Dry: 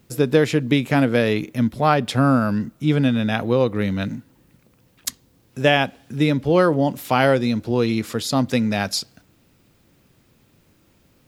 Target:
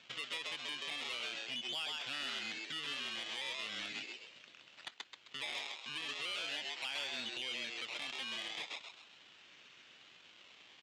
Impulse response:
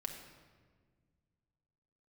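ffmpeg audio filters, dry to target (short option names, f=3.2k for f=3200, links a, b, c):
-filter_complex "[0:a]asetrate=45938,aresample=44100,aresample=16000,acrusher=samples=8:mix=1:aa=0.000001:lfo=1:lforange=8:lforate=0.39,aresample=44100,bandpass=f=3k:t=q:w=3.1:csg=0,acompressor=threshold=-49dB:ratio=2.5,asplit=2[a][b];[b]asplit=4[c][d][e][f];[c]adelay=131,afreqshift=110,volume=-4.5dB[g];[d]adelay=262,afreqshift=220,volume=-13.6dB[h];[e]adelay=393,afreqshift=330,volume=-22.7dB[i];[f]adelay=524,afreqshift=440,volume=-31.9dB[j];[g][h][i][j]amix=inputs=4:normalize=0[k];[a][k]amix=inputs=2:normalize=0,asoftclip=type=tanh:threshold=-37dB,alimiter=level_in=23dB:limit=-24dB:level=0:latency=1:release=499,volume=-23dB,volume=15dB"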